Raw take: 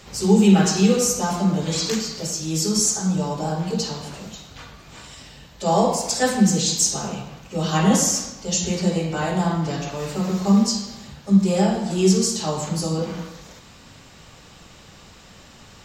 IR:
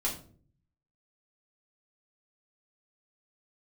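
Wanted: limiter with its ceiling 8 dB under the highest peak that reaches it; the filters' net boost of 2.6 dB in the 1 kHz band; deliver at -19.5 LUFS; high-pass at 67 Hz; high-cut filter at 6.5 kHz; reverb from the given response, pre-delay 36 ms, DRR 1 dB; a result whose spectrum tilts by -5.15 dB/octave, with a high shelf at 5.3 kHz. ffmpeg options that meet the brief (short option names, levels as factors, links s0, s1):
-filter_complex "[0:a]highpass=67,lowpass=6500,equalizer=f=1000:t=o:g=3.5,highshelf=f=5300:g=-3,alimiter=limit=0.266:level=0:latency=1,asplit=2[s0][s1];[1:a]atrim=start_sample=2205,adelay=36[s2];[s1][s2]afir=irnorm=-1:irlink=0,volume=0.501[s3];[s0][s3]amix=inputs=2:normalize=0"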